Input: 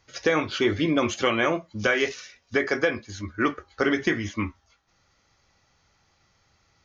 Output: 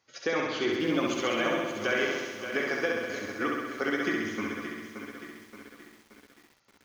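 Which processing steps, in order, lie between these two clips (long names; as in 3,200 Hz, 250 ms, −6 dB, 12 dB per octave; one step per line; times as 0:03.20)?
high-pass filter 180 Hz 12 dB per octave
flutter between parallel walls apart 11.3 metres, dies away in 1.3 s
feedback echo at a low word length 575 ms, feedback 55%, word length 7 bits, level −9 dB
level −7.5 dB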